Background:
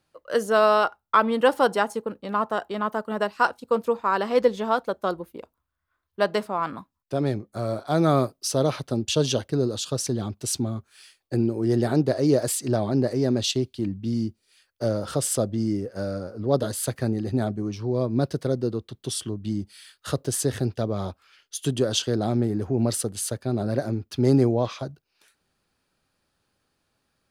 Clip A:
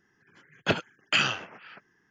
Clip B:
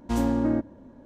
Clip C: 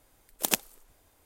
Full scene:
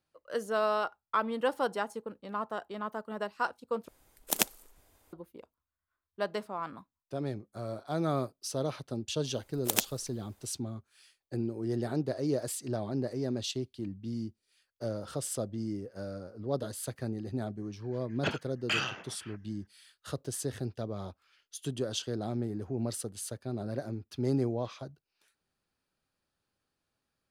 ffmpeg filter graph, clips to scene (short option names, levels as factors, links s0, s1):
-filter_complex "[3:a]asplit=2[s0][s1];[0:a]volume=0.299[s2];[s1]acrusher=bits=3:mode=log:mix=0:aa=0.000001[s3];[1:a]asoftclip=type=tanh:threshold=0.168[s4];[s2]asplit=2[s5][s6];[s5]atrim=end=3.884[s7];[s0]atrim=end=1.25,asetpts=PTS-STARTPTS,volume=0.841[s8];[s6]atrim=start=5.126[s9];[s3]atrim=end=1.25,asetpts=PTS-STARTPTS,volume=0.75,afade=t=in:d=0.004:c=hsin,afade=t=out:st=1.246:d=0.004:c=hsin,adelay=9250[s10];[s4]atrim=end=2.1,asetpts=PTS-STARTPTS,volume=0.531,afade=t=in:d=0.004:c=hsin,afade=t=out:st=2.096:d=0.004:c=hsin,adelay=17570[s11];[s7][s8]acrossfade=d=0.004:c1=hsin:c2=hsin[s12];[s12][s9]acrossfade=d=0.004:c1=hsin:c2=hsin[s13];[s13][s10][s11]amix=inputs=3:normalize=0"